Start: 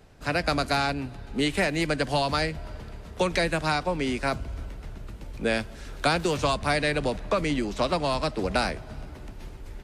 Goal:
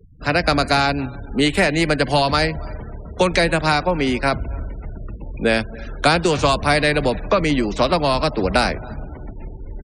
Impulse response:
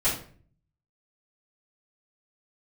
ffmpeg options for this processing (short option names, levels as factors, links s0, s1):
-filter_complex "[0:a]asplit=2[s0][s1];[s1]adelay=276,lowpass=f=4800:p=1,volume=0.075,asplit=2[s2][s3];[s3]adelay=276,lowpass=f=4800:p=1,volume=0.18[s4];[s0][s2][s4]amix=inputs=3:normalize=0,afftfilt=real='re*gte(hypot(re,im),0.00708)':imag='im*gte(hypot(re,im),0.00708)':win_size=1024:overlap=0.75,volume=2.51"